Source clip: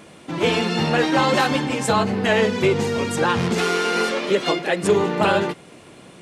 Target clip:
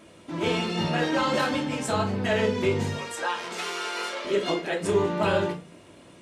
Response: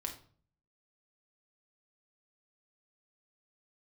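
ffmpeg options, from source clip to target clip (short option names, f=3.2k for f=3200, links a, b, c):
-filter_complex "[0:a]asettb=1/sr,asplit=3[a][b][c];[a]atrim=end=2.934[d];[b]atrim=start=2.93:end=4.25,asetpts=PTS-STARTPTS,afade=t=in:d=0.004:c=qsin,afade=t=out:st=1.316:d=0.004:c=qsin,highpass=630[e];[c]atrim=start=4.246[f];[d][e]acrossfade=d=0.004:c1=hsin:c2=qsin[g];[g][f]acrossfade=d=0.004:c1=qsin:c2=hsin[h];[1:a]atrim=start_sample=2205,asetrate=70560,aresample=44100[i];[h][i]afir=irnorm=-1:irlink=0,volume=-2dB"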